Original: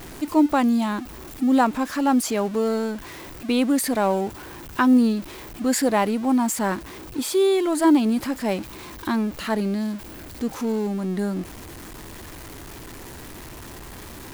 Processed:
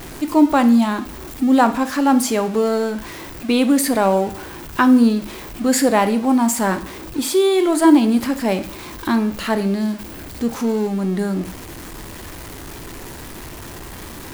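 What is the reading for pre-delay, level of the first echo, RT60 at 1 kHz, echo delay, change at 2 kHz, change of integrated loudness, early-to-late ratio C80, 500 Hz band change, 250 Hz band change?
6 ms, none, 0.50 s, none, +5.0 dB, +5.0 dB, 18.0 dB, +4.5 dB, +5.0 dB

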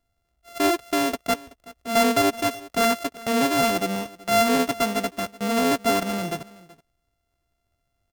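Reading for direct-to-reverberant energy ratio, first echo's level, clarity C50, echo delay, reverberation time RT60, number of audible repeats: none, -20.5 dB, none, 0.377 s, none, 1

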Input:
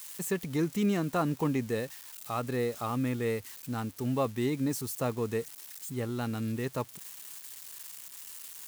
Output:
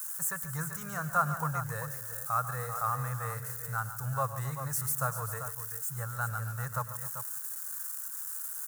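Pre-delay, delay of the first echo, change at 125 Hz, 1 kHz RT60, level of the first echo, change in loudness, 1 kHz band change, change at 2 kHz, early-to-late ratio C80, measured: none, 0.104 s, 0.0 dB, none, -18.5 dB, -0.5 dB, +4.5 dB, +4.0 dB, none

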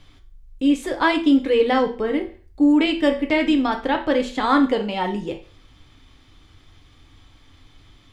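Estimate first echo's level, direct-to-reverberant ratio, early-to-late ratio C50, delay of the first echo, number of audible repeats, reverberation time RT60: none, 4.0 dB, 11.5 dB, none, none, 0.40 s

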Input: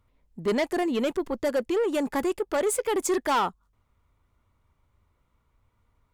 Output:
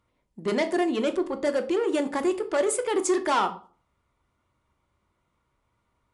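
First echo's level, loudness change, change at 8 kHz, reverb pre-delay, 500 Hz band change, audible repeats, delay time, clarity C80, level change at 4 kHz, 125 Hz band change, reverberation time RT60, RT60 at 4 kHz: none, +1.0 dB, +0.5 dB, 3 ms, +1.0 dB, none, none, 19.0 dB, +0.5 dB, n/a, 0.40 s, 0.30 s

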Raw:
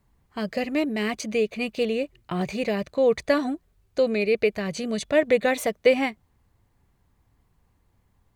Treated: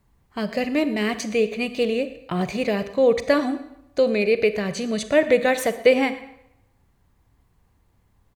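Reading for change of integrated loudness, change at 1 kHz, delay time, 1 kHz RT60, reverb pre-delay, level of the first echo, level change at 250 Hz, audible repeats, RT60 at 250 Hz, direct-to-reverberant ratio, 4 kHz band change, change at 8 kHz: +2.5 dB, +3.0 dB, 0.116 s, 0.85 s, 33 ms, -19.0 dB, +3.0 dB, 1, 0.75 s, 11.0 dB, +3.0 dB, +3.0 dB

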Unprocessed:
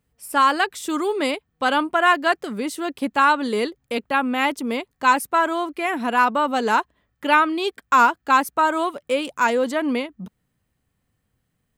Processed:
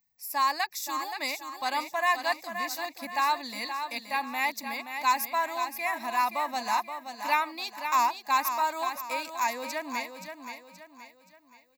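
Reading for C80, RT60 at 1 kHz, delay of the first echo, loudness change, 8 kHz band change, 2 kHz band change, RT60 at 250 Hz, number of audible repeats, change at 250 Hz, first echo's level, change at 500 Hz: none, none, 0.525 s, -8.5 dB, -2.0 dB, -9.0 dB, none, 4, -18.0 dB, -8.0 dB, -13.5 dB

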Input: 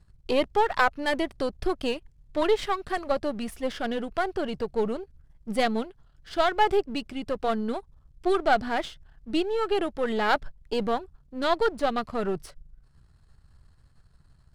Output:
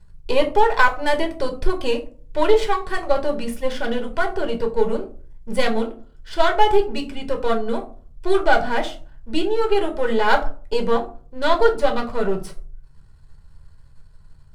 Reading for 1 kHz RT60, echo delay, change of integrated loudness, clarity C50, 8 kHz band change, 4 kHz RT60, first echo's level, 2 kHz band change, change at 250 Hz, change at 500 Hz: 0.40 s, none, +6.0 dB, 13.5 dB, +5.5 dB, 0.25 s, none, +6.5 dB, +3.5 dB, +6.5 dB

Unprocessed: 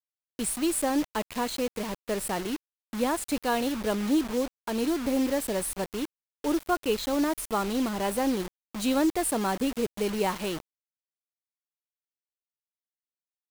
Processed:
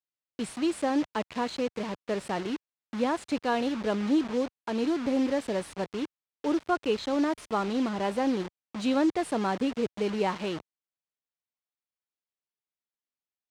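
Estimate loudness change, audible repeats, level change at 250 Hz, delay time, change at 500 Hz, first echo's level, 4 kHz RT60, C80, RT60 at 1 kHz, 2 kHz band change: -1.0 dB, none, 0.0 dB, none, -0.5 dB, none, none, none, none, -1.0 dB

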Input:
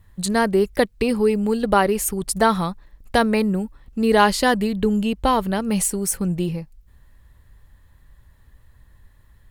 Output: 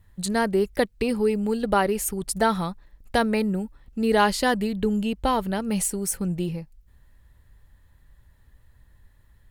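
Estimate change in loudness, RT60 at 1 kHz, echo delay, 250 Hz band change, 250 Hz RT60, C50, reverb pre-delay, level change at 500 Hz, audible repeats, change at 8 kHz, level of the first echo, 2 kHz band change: -4.0 dB, none, none, -4.0 dB, none, none, none, -4.0 dB, none, -4.0 dB, none, -4.0 dB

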